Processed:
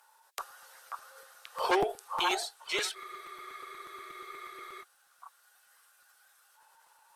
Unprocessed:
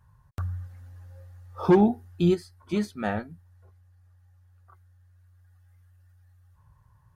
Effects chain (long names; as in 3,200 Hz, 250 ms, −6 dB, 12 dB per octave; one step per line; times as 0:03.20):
Butterworth high-pass 390 Hz 96 dB per octave
tilt shelving filter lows −9 dB, about 1,200 Hz
in parallel at −1 dB: downward compressor, threshold −43 dBFS, peak gain reduction 17 dB
on the sum: harmonic generator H 8 −41 dB, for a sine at −14.5 dBFS
formants moved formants −2 semitones
on a send: echo through a band-pass that steps 536 ms, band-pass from 1,100 Hz, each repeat 1.4 octaves, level 0 dB
on the sum: frozen spectrum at 0:02.97, 1.85 s
regular buffer underruns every 0.12 s, samples 256, repeat, from 0:00.50
level +1.5 dB